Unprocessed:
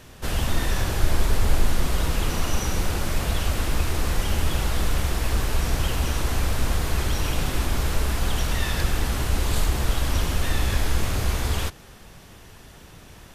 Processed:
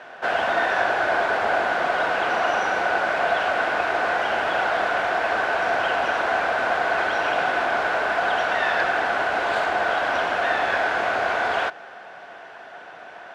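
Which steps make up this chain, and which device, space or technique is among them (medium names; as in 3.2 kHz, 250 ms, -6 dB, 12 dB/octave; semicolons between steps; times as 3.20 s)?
tin-can telephone (band-pass 580–2100 Hz; small resonant body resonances 700/1500 Hz, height 12 dB, ringing for 25 ms); trim +8.5 dB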